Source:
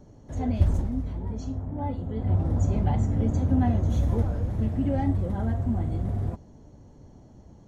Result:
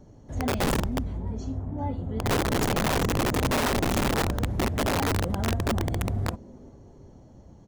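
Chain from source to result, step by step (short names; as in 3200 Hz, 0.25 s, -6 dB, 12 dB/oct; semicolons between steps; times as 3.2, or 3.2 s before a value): frequency-shifting echo 0.397 s, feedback 40%, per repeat +150 Hz, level -23.5 dB; wrapped overs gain 19.5 dB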